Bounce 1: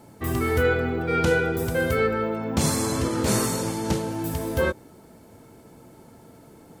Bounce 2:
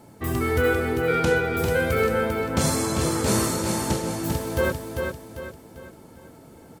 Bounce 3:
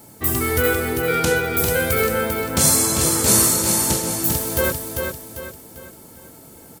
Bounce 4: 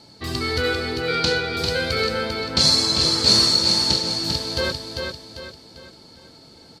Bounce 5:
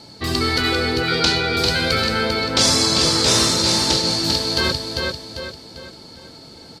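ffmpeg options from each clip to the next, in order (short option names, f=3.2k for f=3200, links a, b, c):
-af "aecho=1:1:396|792|1188|1584|1980:0.562|0.225|0.09|0.036|0.0144"
-af "aemphasis=mode=production:type=75kf,volume=1dB"
-af "lowpass=f=4.4k:t=q:w=9.1,volume=-4dB"
-af "afftfilt=real='re*lt(hypot(re,im),0.398)':imag='im*lt(hypot(re,im),0.398)':win_size=1024:overlap=0.75,volume=6dB"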